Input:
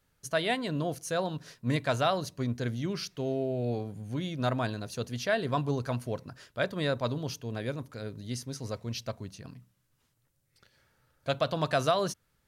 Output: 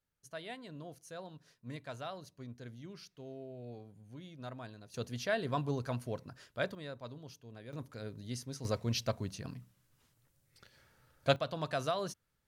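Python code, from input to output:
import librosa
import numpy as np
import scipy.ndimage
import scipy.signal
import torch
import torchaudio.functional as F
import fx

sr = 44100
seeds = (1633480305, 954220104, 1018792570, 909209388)

y = fx.gain(x, sr, db=fx.steps((0.0, -16.0), (4.94, -5.0), (6.75, -15.5), (7.73, -5.0), (8.65, 2.0), (11.36, -8.0)))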